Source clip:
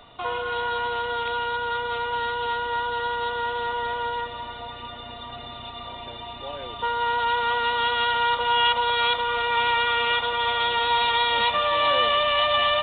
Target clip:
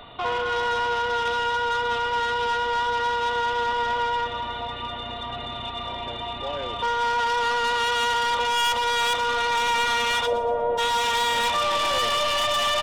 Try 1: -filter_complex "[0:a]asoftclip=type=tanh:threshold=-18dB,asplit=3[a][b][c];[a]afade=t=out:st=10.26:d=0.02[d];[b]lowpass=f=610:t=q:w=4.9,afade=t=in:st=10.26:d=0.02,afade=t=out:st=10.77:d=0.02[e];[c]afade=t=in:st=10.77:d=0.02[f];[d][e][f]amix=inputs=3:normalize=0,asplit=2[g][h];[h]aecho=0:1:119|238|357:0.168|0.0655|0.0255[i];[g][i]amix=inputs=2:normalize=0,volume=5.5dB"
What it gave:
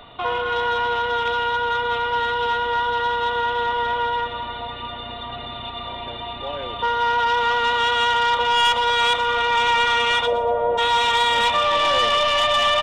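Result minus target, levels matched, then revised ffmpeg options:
soft clip: distortion -8 dB
-filter_complex "[0:a]asoftclip=type=tanh:threshold=-26dB,asplit=3[a][b][c];[a]afade=t=out:st=10.26:d=0.02[d];[b]lowpass=f=610:t=q:w=4.9,afade=t=in:st=10.26:d=0.02,afade=t=out:st=10.77:d=0.02[e];[c]afade=t=in:st=10.77:d=0.02[f];[d][e][f]amix=inputs=3:normalize=0,asplit=2[g][h];[h]aecho=0:1:119|238|357:0.168|0.0655|0.0255[i];[g][i]amix=inputs=2:normalize=0,volume=5.5dB"

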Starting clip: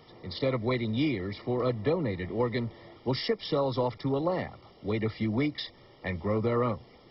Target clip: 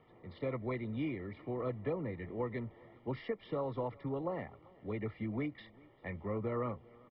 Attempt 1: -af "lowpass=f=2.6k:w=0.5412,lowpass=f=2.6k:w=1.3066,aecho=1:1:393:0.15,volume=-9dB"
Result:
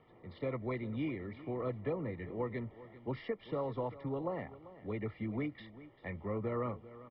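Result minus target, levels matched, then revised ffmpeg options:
echo-to-direct +8 dB
-af "lowpass=f=2.6k:w=0.5412,lowpass=f=2.6k:w=1.3066,aecho=1:1:393:0.0596,volume=-9dB"

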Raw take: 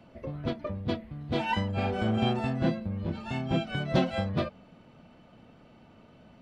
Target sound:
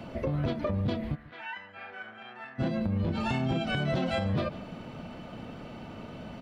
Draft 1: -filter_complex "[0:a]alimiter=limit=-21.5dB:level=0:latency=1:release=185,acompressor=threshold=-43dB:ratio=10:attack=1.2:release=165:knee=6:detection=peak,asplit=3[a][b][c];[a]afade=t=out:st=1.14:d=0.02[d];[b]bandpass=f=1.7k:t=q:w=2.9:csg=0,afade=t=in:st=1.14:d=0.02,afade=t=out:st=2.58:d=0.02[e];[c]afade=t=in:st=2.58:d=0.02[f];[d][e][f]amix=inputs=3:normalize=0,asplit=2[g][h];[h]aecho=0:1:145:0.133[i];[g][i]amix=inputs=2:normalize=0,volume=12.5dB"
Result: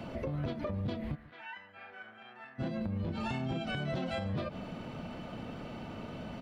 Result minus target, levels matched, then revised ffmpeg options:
compressor: peak gain reduction +6.5 dB
-filter_complex "[0:a]alimiter=limit=-21.5dB:level=0:latency=1:release=185,acompressor=threshold=-36dB:ratio=10:attack=1.2:release=165:knee=6:detection=peak,asplit=3[a][b][c];[a]afade=t=out:st=1.14:d=0.02[d];[b]bandpass=f=1.7k:t=q:w=2.9:csg=0,afade=t=in:st=1.14:d=0.02,afade=t=out:st=2.58:d=0.02[e];[c]afade=t=in:st=2.58:d=0.02[f];[d][e][f]amix=inputs=3:normalize=0,asplit=2[g][h];[h]aecho=0:1:145:0.133[i];[g][i]amix=inputs=2:normalize=0,volume=12.5dB"

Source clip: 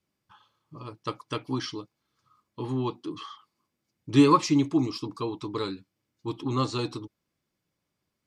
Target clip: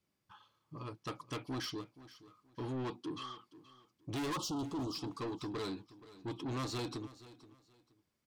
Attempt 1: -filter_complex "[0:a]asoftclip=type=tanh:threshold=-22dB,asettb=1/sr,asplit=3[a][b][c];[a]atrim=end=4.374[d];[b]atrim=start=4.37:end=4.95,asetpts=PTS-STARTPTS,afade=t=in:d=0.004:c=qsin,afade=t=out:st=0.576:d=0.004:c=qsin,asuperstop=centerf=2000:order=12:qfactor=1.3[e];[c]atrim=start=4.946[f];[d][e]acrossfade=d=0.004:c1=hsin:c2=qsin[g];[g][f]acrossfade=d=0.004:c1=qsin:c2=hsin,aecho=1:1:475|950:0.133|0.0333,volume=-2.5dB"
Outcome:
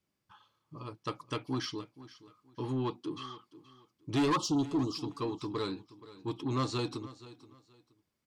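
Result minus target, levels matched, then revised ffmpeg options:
soft clip: distortion -6 dB
-filter_complex "[0:a]asoftclip=type=tanh:threshold=-33dB,asettb=1/sr,asplit=3[a][b][c];[a]atrim=end=4.374[d];[b]atrim=start=4.37:end=4.95,asetpts=PTS-STARTPTS,afade=t=in:d=0.004:c=qsin,afade=t=out:st=0.576:d=0.004:c=qsin,asuperstop=centerf=2000:order=12:qfactor=1.3[e];[c]atrim=start=4.946[f];[d][e]acrossfade=d=0.004:c1=hsin:c2=qsin[g];[g][f]acrossfade=d=0.004:c1=qsin:c2=hsin,aecho=1:1:475|950:0.133|0.0333,volume=-2.5dB"

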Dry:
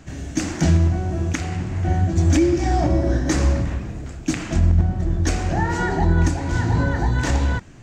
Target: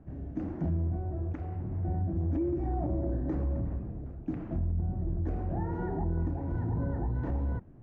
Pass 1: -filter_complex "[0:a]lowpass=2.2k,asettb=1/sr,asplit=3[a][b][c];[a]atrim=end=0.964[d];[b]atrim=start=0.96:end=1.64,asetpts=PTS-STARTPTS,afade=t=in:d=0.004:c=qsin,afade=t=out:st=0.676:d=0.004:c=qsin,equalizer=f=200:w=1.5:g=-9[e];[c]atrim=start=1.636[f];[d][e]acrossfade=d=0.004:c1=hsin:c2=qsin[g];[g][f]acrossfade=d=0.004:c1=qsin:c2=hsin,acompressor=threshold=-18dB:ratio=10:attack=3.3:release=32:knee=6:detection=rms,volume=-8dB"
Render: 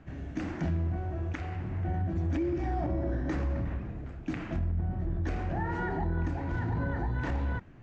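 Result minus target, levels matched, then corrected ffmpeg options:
2000 Hz band +13.5 dB
-filter_complex "[0:a]lowpass=680,asettb=1/sr,asplit=3[a][b][c];[a]atrim=end=0.964[d];[b]atrim=start=0.96:end=1.64,asetpts=PTS-STARTPTS,afade=t=in:d=0.004:c=qsin,afade=t=out:st=0.676:d=0.004:c=qsin,equalizer=f=200:w=1.5:g=-9[e];[c]atrim=start=1.636[f];[d][e]acrossfade=d=0.004:c1=hsin:c2=qsin[g];[g][f]acrossfade=d=0.004:c1=qsin:c2=hsin,acompressor=threshold=-18dB:ratio=10:attack=3.3:release=32:knee=6:detection=rms,volume=-8dB"

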